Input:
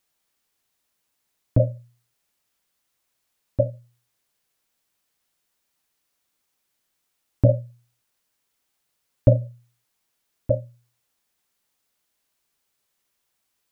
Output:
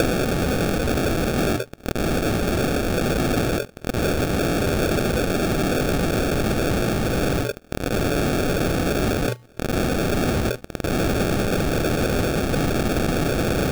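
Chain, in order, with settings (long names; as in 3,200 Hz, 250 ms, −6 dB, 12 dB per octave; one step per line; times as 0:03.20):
spike at every zero crossing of −9 dBFS
high-pass filter 390 Hz 6 dB per octave, from 0:07.55 780 Hz, from 0:09.28 140 Hz
reverb reduction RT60 0.97 s
downward compressor, threshold −19 dBFS, peak gain reduction 8.5 dB
sample-rate reduction 1,000 Hz, jitter 0%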